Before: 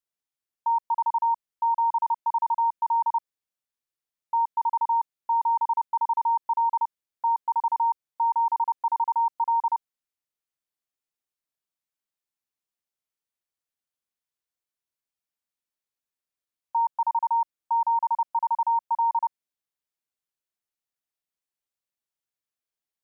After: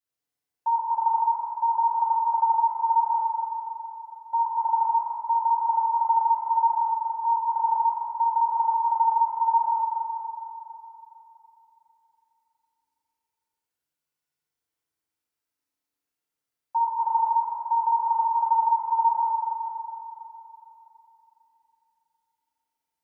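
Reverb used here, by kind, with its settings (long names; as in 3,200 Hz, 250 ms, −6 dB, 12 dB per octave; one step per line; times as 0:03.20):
feedback delay network reverb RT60 3.3 s, high-frequency decay 0.5×, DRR −9 dB
level −4.5 dB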